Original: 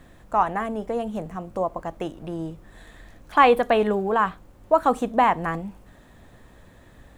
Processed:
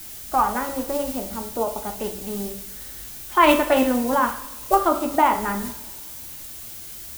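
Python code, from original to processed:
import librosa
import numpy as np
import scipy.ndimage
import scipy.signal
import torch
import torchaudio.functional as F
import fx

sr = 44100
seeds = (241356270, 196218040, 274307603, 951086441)

y = fx.dmg_noise_colour(x, sr, seeds[0], colour='blue', level_db=-37.0)
y = fx.pitch_keep_formants(y, sr, semitones=3.5)
y = fx.rev_double_slope(y, sr, seeds[1], early_s=0.59, late_s=2.0, knee_db=-18, drr_db=4.5)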